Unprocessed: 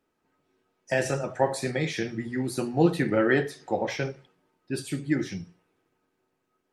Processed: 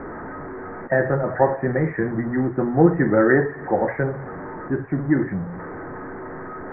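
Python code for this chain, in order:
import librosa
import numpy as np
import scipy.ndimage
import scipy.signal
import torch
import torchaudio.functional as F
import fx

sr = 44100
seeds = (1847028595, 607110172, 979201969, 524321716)

y = x + 0.5 * 10.0 ** (-32.0 / 20.0) * np.sign(x)
y = scipy.signal.sosfilt(scipy.signal.butter(12, 1900.0, 'lowpass', fs=sr, output='sos'), y)
y = y * librosa.db_to_amplitude(5.5)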